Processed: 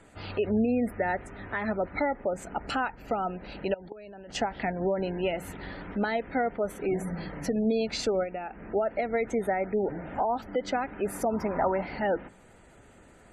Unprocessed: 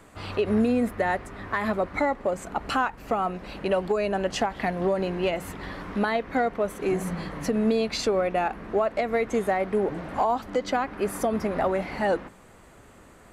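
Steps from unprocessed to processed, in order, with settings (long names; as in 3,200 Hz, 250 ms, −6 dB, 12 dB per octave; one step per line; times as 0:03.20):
0:08.23–0:08.72: downward compressor 10 to 1, threshold −29 dBFS, peak gain reduction 9 dB
notch filter 1,100 Hz, Q 5
0:03.73–0:04.35: output level in coarse steps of 21 dB
0:11.26–0:11.86: parametric band 1,000 Hz +10.5 dB 0.48 octaves
gate on every frequency bin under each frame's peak −30 dB strong
level −3 dB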